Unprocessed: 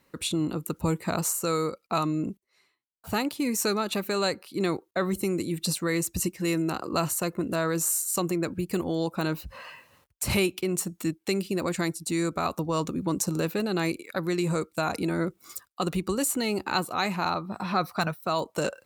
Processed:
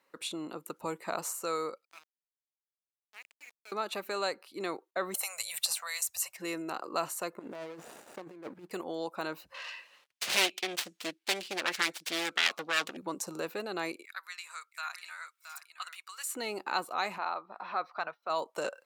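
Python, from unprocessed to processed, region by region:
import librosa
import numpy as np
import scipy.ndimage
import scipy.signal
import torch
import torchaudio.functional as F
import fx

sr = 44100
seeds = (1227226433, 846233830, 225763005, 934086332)

y = fx.chain(x, sr, fx.bandpass_q(hz=2300.0, q=9.2),
    fx.sample_gate(floor_db=-41.5), at=(1.85, 3.72))
y = fx.chain(y, sr, fx.ellip_bandstop(low_hz=100.0, high_hz=670.0, order=3, stop_db=50),
    fx.high_shelf(hz=5600.0, db=10.5),
    fx.band_squash(depth_pct=100), at=(5.14, 6.37))
y = fx.chain(y, sr, fx.median_filter(points=41),
    fx.over_compress(threshold_db=-32.0, ratio=-0.5), at=(7.39, 8.71))
y = fx.chain(y, sr, fx.self_delay(depth_ms=0.83),
    fx.weighting(curve='D'), at=(9.54, 12.97))
y = fx.chain(y, sr, fx.highpass(hz=1300.0, slope=24),
    fx.echo_single(ms=671, db=-9.5), at=(14.05, 16.35))
y = fx.chain(y, sr, fx.highpass(hz=560.0, slope=6),
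    fx.air_absorb(metres=220.0), at=(17.18, 18.3))
y = scipy.signal.sosfilt(scipy.signal.butter(2, 620.0, 'highpass', fs=sr, output='sos'), y)
y = fx.tilt_eq(y, sr, slope=-2.0)
y = y * 10.0 ** (-3.0 / 20.0)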